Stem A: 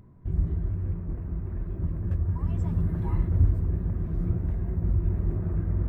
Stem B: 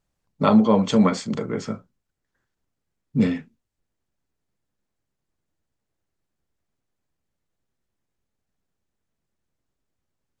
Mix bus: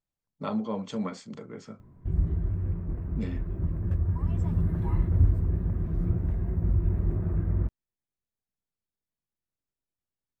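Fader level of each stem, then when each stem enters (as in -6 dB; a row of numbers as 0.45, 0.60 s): 0.0, -14.5 dB; 1.80, 0.00 s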